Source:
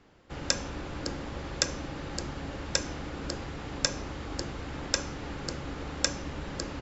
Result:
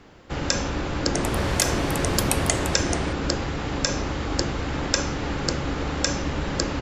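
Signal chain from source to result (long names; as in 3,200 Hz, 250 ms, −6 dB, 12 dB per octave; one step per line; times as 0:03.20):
0:01.05–0:03.55: delay with pitch and tempo change per echo 96 ms, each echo +4 semitones, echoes 3
boost into a limiter +11.5 dB
level −1 dB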